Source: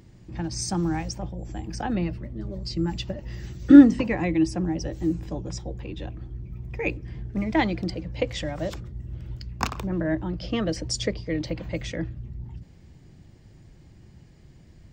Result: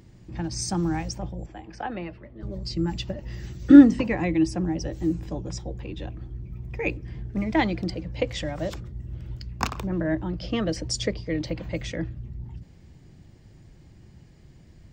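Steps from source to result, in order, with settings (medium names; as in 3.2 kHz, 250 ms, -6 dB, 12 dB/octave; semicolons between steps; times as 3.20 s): 1.46–2.43 s: three-band isolator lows -12 dB, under 380 Hz, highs -17 dB, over 3.6 kHz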